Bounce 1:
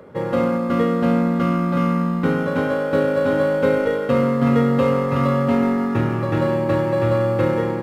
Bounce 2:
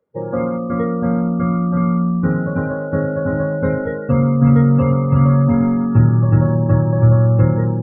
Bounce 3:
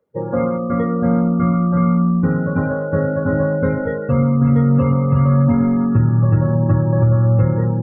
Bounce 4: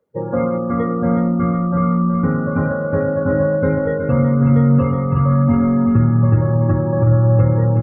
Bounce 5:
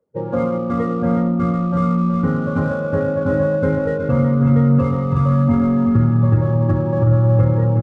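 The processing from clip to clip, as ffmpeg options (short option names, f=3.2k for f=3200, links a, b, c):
-af "afftdn=nr=32:nf=-25,asubboost=boost=7:cutoff=150"
-af "alimiter=limit=-7.5dB:level=0:latency=1:release=343,flanger=delay=0.1:depth=1.9:regen=-70:speed=0.86:shape=triangular,volume=5.5dB"
-af "aecho=1:1:369|738|1107|1476|1845:0.376|0.173|0.0795|0.0366|0.0168"
-filter_complex "[0:a]asplit=2[a][b];[b]adynamicsmooth=sensitivity=7.5:basefreq=1.4k,volume=2dB[c];[a][c]amix=inputs=2:normalize=0,aresample=22050,aresample=44100,volume=-8dB"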